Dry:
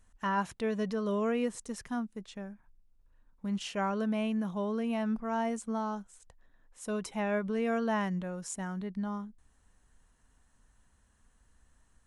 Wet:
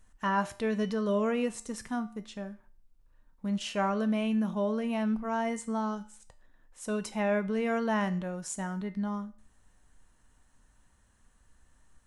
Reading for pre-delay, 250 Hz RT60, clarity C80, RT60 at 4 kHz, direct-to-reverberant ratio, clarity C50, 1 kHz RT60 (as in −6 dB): 3 ms, 0.45 s, 20.0 dB, 0.45 s, 9.5 dB, 16.0 dB, 0.45 s